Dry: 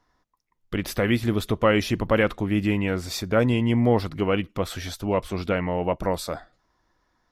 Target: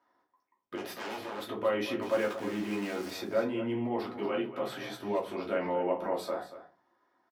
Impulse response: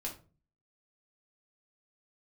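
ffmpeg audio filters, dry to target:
-filter_complex "[0:a]alimiter=limit=0.106:level=0:latency=1:release=29,equalizer=f=6700:w=0.57:g=-13,asplit=3[s0][s1][s2];[s0]afade=t=out:st=2.01:d=0.02[s3];[s1]aeval=exprs='val(0)*gte(abs(val(0)),0.015)':c=same,afade=t=in:st=2.01:d=0.02,afade=t=out:st=3.1:d=0.02[s4];[s2]afade=t=in:st=3.1:d=0.02[s5];[s3][s4][s5]amix=inputs=3:normalize=0,asettb=1/sr,asplit=3[s6][s7][s8];[s6]atrim=end=4.274[s9];[s7]atrim=start=4.27:end=4.92,asetpts=PTS-STARTPTS,afade=t=in:d=0.004:c=qsin,afade=t=out:st=0.646:d=0.004:c=qsin,afreqshift=34[s10];[s8]atrim=start=4.916[s11];[s9][s10]acrossfade=d=0.004:c1=hsin:c2=qsin[s12];[s12][s11]acrossfade=d=0.004:c1=qsin:c2=hsin,aecho=1:1:232:0.224,asplit=3[s13][s14][s15];[s13]afade=t=out:st=0.75:d=0.02[s16];[s14]aeval=exprs='0.0266*(abs(mod(val(0)/0.0266+3,4)-2)-1)':c=same,afade=t=in:st=0.75:d=0.02,afade=t=out:st=1.44:d=0.02[s17];[s15]afade=t=in:st=1.44:d=0.02[s18];[s16][s17][s18]amix=inputs=3:normalize=0,highpass=360,highshelf=f=10000:g=-6[s19];[1:a]atrim=start_sample=2205,asetrate=52920,aresample=44100[s20];[s19][s20]afir=irnorm=-1:irlink=0,volume=1.26"

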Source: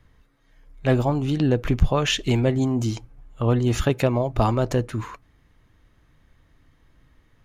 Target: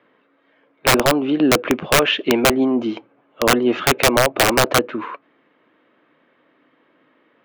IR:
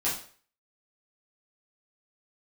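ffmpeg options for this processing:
-af "highpass=f=260:w=0.5412,highpass=f=260:w=1.3066,equalizer=f=560:t=q:w=4:g=4,equalizer=f=820:t=q:w=4:g=-3,equalizer=f=1900:t=q:w=4:g=-4,lowpass=f=2900:w=0.5412,lowpass=f=2900:w=1.3066,aeval=exprs='(mod(5.62*val(0)+1,2)-1)/5.62':c=same,volume=2.66"

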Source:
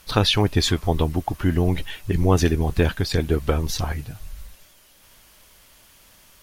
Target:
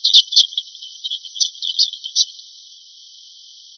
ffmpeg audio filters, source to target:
-af "afftfilt=real='re*between(b*sr/4096,3000,6100)':imag='im*between(b*sr/4096,3000,6100)':win_size=4096:overlap=0.75,atempo=1.7,apsyclip=10.6,volume=0.794"

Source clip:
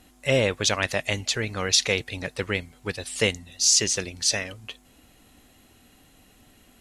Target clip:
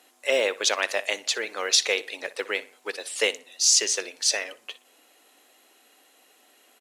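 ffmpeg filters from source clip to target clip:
-filter_complex "[0:a]highpass=f=380:w=0.5412,highpass=f=380:w=1.3066,asplit=2[s0][s1];[s1]adelay=61,lowpass=f=3600:p=1,volume=0.141,asplit=2[s2][s3];[s3]adelay=61,lowpass=f=3600:p=1,volume=0.36,asplit=2[s4][s5];[s5]adelay=61,lowpass=f=3600:p=1,volume=0.36[s6];[s0][s2][s4][s6]amix=inputs=4:normalize=0,acrusher=bits=9:mode=log:mix=0:aa=0.000001"

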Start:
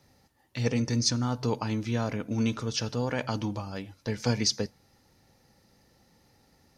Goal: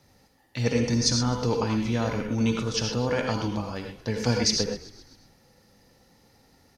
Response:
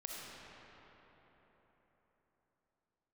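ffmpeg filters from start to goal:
-filter_complex "[0:a]asplit=6[s0][s1][s2][s3][s4][s5];[s1]adelay=130,afreqshift=-49,volume=0.112[s6];[s2]adelay=260,afreqshift=-98,volume=0.0684[s7];[s3]adelay=390,afreqshift=-147,volume=0.0417[s8];[s4]adelay=520,afreqshift=-196,volume=0.0254[s9];[s5]adelay=650,afreqshift=-245,volume=0.0155[s10];[s0][s6][s7][s8][s9][s10]amix=inputs=6:normalize=0[s11];[1:a]atrim=start_sample=2205,atrim=end_sample=4410,asetrate=33516,aresample=44100[s12];[s11][s12]afir=irnorm=-1:irlink=0,volume=2.11"

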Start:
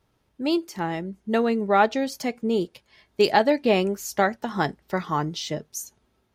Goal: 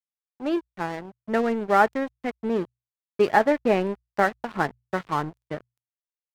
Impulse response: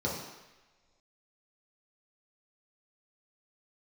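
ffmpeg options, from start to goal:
-af "highshelf=f=2600:t=q:w=1.5:g=-12,aeval=exprs='sgn(val(0))*max(abs(val(0))-0.0224,0)':c=same,bandreject=f=60:t=h:w=6,bandreject=f=120:t=h:w=6"

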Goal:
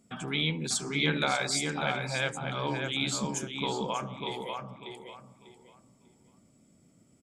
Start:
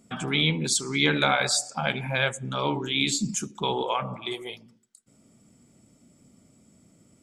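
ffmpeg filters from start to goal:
-filter_complex "[0:a]asplit=2[s0][s1];[s1]adelay=595,lowpass=f=3000:p=1,volume=0.631,asplit=2[s2][s3];[s3]adelay=595,lowpass=f=3000:p=1,volume=0.28,asplit=2[s4][s5];[s5]adelay=595,lowpass=f=3000:p=1,volume=0.28,asplit=2[s6][s7];[s7]adelay=595,lowpass=f=3000:p=1,volume=0.28[s8];[s0][s2][s4][s6][s8]amix=inputs=5:normalize=0,volume=0.501"

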